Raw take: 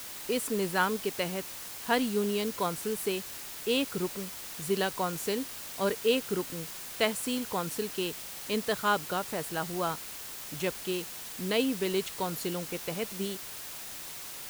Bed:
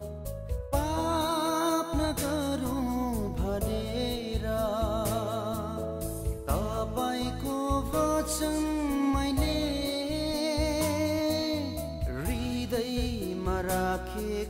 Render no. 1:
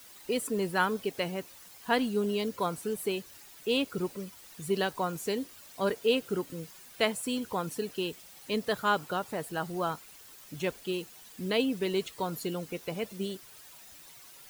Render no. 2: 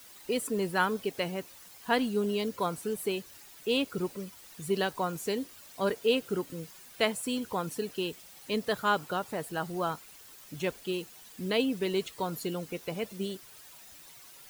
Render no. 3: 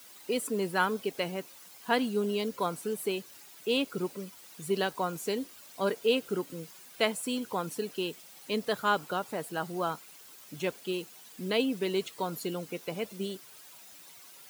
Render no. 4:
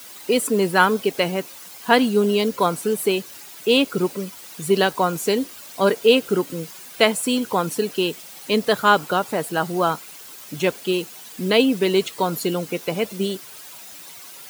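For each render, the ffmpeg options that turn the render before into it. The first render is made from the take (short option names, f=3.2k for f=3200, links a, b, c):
-af "afftdn=nr=12:nf=-42"
-af anull
-af "highpass=150,bandreject=f=1.8k:w=26"
-af "volume=11.5dB,alimiter=limit=-1dB:level=0:latency=1"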